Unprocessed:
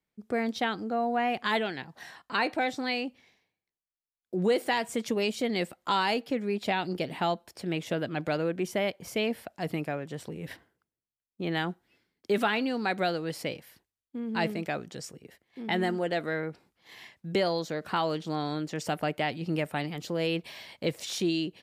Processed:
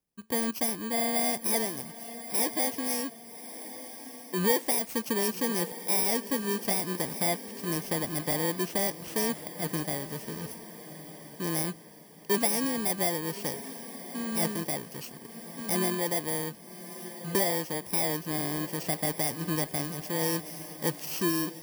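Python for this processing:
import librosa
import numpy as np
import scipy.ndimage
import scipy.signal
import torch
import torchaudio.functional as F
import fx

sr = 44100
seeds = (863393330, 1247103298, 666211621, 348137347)

y = fx.bit_reversed(x, sr, seeds[0], block=32)
y = fx.echo_diffused(y, sr, ms=1185, feedback_pct=42, wet_db=-13)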